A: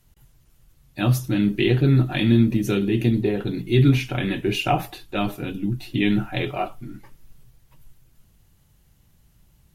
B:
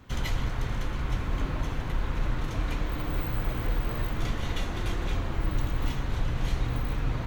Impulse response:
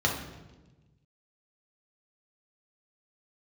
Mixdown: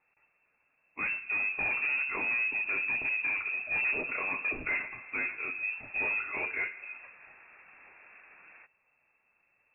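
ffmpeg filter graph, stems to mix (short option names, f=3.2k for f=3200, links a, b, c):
-filter_complex "[0:a]volume=-1.5dB,asplit=2[a][b];[b]volume=-23.5dB[c];[1:a]adelay=1400,volume=-15.5dB[d];[2:a]atrim=start_sample=2205[e];[c][e]afir=irnorm=-1:irlink=0[f];[a][d][f]amix=inputs=3:normalize=0,highpass=290,asoftclip=type=tanh:threshold=-27dB,lowpass=f=2.4k:t=q:w=0.5098,lowpass=f=2.4k:t=q:w=0.6013,lowpass=f=2.4k:t=q:w=0.9,lowpass=f=2.4k:t=q:w=2.563,afreqshift=-2800"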